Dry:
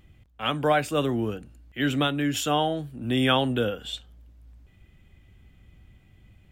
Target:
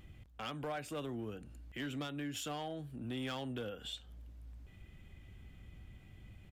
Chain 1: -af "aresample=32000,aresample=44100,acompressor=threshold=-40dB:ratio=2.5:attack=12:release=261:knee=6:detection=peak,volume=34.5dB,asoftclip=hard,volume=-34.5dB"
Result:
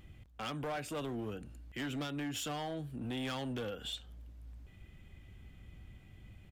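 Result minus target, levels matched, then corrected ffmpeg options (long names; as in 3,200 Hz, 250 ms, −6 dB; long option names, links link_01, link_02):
downward compressor: peak gain reduction −3.5 dB
-af "aresample=32000,aresample=44100,acompressor=threshold=-46dB:ratio=2.5:attack=12:release=261:knee=6:detection=peak,volume=34.5dB,asoftclip=hard,volume=-34.5dB"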